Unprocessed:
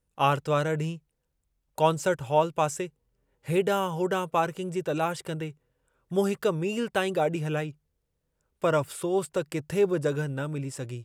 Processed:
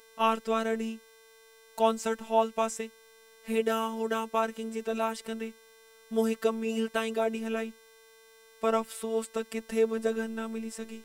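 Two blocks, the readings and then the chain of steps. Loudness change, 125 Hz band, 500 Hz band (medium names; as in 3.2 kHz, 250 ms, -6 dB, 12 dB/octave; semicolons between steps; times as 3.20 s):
-3.0 dB, under -15 dB, -2.5 dB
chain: vibrato 1.8 Hz 28 cents; mains buzz 400 Hz, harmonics 39, -54 dBFS -4 dB/octave; robot voice 224 Hz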